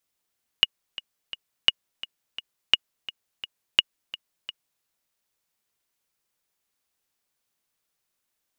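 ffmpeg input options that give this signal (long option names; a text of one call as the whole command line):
ffmpeg -f lavfi -i "aevalsrc='pow(10,(-2.5-17.5*gte(mod(t,3*60/171),60/171))/20)*sin(2*PI*2880*mod(t,60/171))*exp(-6.91*mod(t,60/171)/0.03)':duration=4.21:sample_rate=44100" out.wav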